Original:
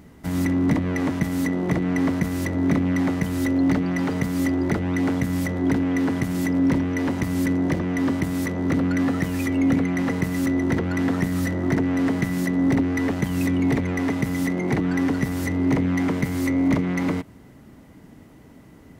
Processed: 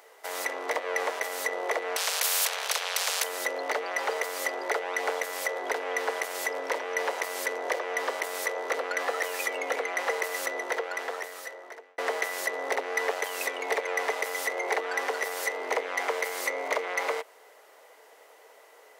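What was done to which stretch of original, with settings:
0:01.96–0:03.24: every bin compressed towards the loudest bin 10 to 1
0:10.45–0:11.98: fade out
whole clip: Chebyshev high-pass filter 450 Hz, order 5; level +3 dB

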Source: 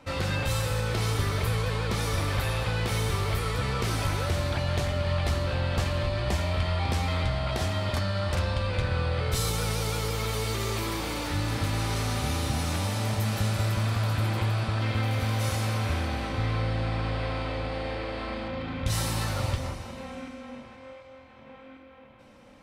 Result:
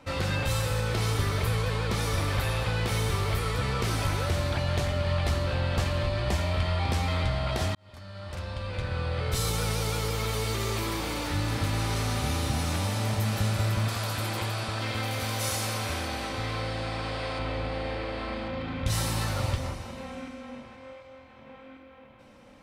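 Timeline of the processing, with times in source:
0:07.75–0:09.55: fade in
0:13.88–0:17.39: bass and treble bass −7 dB, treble +7 dB

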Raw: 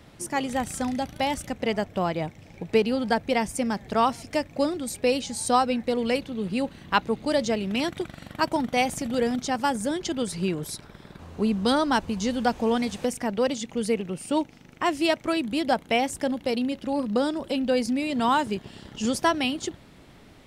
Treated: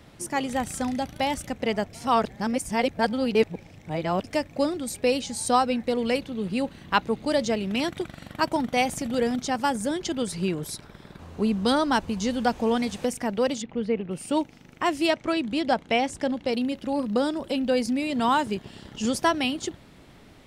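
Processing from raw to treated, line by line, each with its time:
0:01.93–0:04.24: reverse
0:13.62–0:14.11: high-frequency loss of the air 340 metres
0:15.10–0:16.53: low-pass filter 7,200 Hz

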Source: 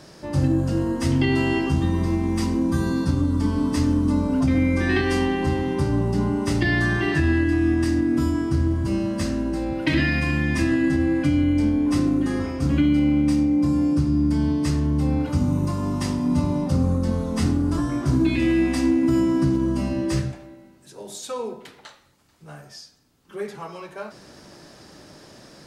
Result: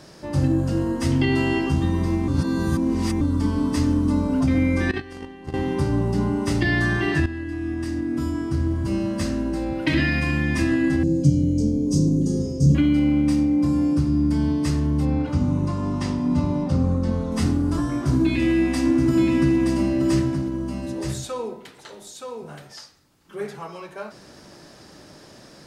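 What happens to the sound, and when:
0:02.28–0:03.21: reverse
0:04.91–0:05.54: noise gate −19 dBFS, range −18 dB
0:07.26–0:09.06: fade in, from −12.5 dB
0:11.03–0:12.75: drawn EQ curve 100 Hz 0 dB, 150 Hz +12 dB, 290 Hz −3 dB, 460 Hz +6 dB, 770 Hz −15 dB, 1,900 Hz −28 dB, 3,700 Hz −8 dB, 6,400 Hz +10 dB, 10,000 Hz −2 dB
0:15.05–0:17.32: high-frequency loss of the air 66 metres
0:17.93–0:23.59: single-tap delay 923 ms −5 dB

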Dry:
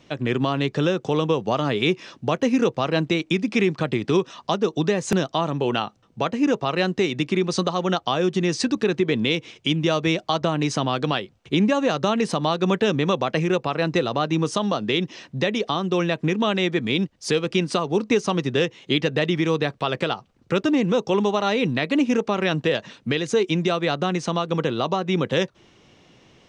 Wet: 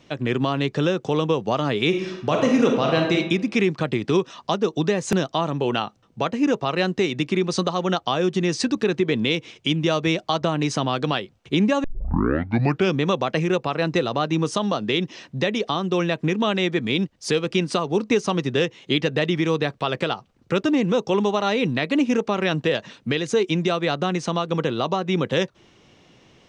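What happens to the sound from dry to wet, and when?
0:01.88–0:03.15: thrown reverb, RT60 0.85 s, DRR 1 dB
0:11.84: tape start 1.14 s

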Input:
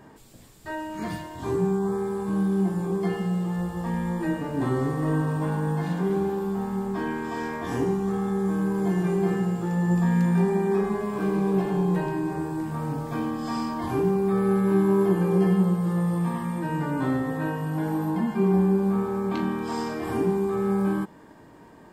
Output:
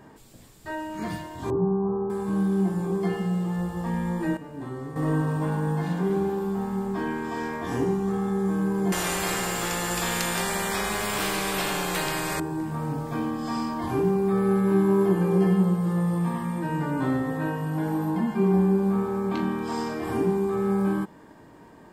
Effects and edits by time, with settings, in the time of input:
0:01.50–0:02.10: Butterworth low-pass 1,200 Hz
0:04.37–0:04.96: clip gain −10 dB
0:08.92–0:12.40: every bin compressed towards the loudest bin 4 to 1

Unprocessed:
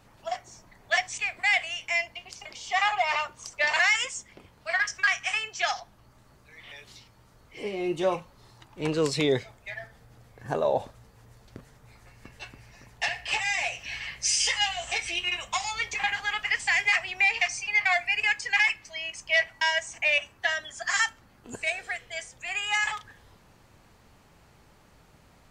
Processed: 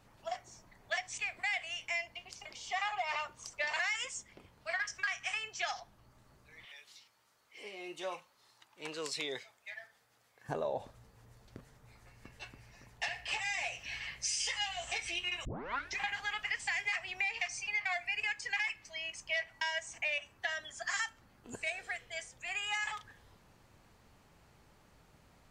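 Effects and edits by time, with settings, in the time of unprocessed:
0:06.65–0:10.49: high-pass filter 1,400 Hz 6 dB per octave
0:15.45: tape start 0.54 s
whole clip: downward compressor 3 to 1, threshold −27 dBFS; level −6 dB

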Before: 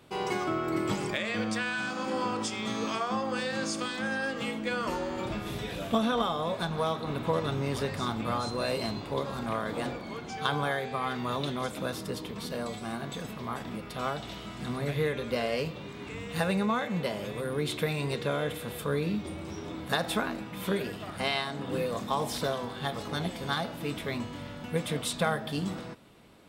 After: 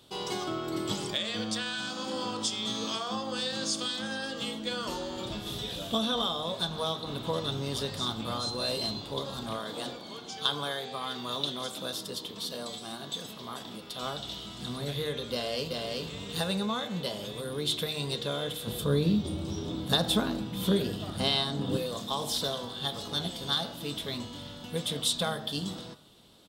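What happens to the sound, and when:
0:09.57–0:14.02: high-pass filter 220 Hz 6 dB per octave
0:15.32–0:16.03: delay throw 380 ms, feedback 10%, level −2.5 dB
0:18.67–0:21.77: low-shelf EQ 440 Hz +10.5 dB
whole clip: high shelf with overshoot 2,800 Hz +6 dB, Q 3; hum removal 77.09 Hz, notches 31; level −3 dB

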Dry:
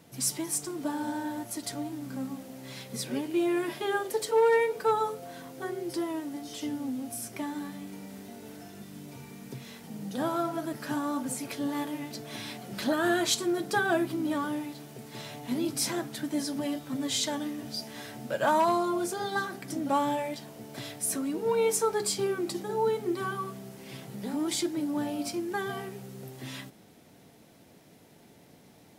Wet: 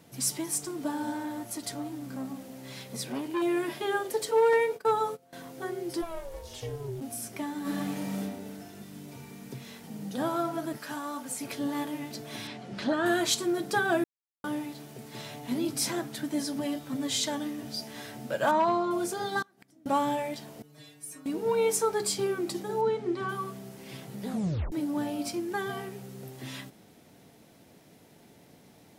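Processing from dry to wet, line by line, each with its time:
0:01.14–0:03.42: saturating transformer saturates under 860 Hz
0:04.53–0:05.33: noise gate −38 dBFS, range −19 dB
0:06.01–0:07.00: ring modulation 360 Hz → 120 Hz
0:07.61–0:08.20: thrown reverb, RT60 1 s, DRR −9 dB
0:10.78–0:11.41: low-shelf EQ 470 Hz −11 dB
0:12.47–0:13.06: high-frequency loss of the air 93 metres
0:14.04–0:14.44: silence
0:18.51–0:18.91: high-frequency loss of the air 130 metres
0:19.42–0:19.86: gate with flip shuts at −30 dBFS, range −27 dB
0:20.62–0:21.26: stiff-string resonator 150 Hz, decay 0.36 s, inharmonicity 0.002
0:22.81–0:23.29: high-frequency loss of the air 90 metres
0:24.28: tape stop 0.44 s

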